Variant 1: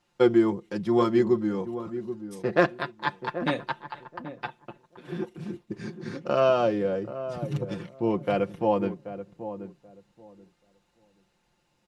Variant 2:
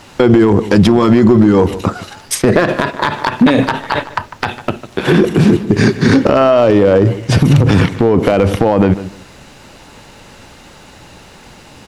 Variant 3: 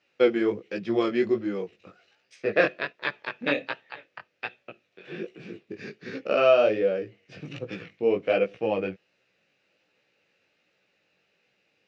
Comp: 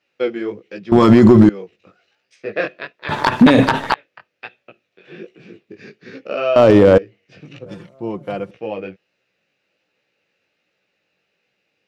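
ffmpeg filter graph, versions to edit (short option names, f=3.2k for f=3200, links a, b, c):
-filter_complex "[1:a]asplit=3[a][b][c];[2:a]asplit=5[d][e][f][g][h];[d]atrim=end=0.922[i];[a]atrim=start=0.918:end=1.492[j];[e]atrim=start=1.488:end=3.092[k];[b]atrim=start=3.088:end=3.942[l];[f]atrim=start=3.938:end=6.562[m];[c]atrim=start=6.558:end=6.982[n];[g]atrim=start=6.978:end=7.662[o];[0:a]atrim=start=7.658:end=8.512[p];[h]atrim=start=8.508[q];[i][j]acrossfade=d=0.004:c1=hsin:c2=hsin[r];[r][k]acrossfade=d=0.004:c1=hsin:c2=hsin[s];[s][l]acrossfade=d=0.004:c1=hsin:c2=hsin[t];[t][m]acrossfade=d=0.004:c1=hsin:c2=hsin[u];[u][n]acrossfade=d=0.004:c1=hsin:c2=hsin[v];[v][o]acrossfade=d=0.004:c1=hsin:c2=hsin[w];[w][p]acrossfade=d=0.004:c1=hsin:c2=hsin[x];[x][q]acrossfade=d=0.004:c1=hsin:c2=hsin"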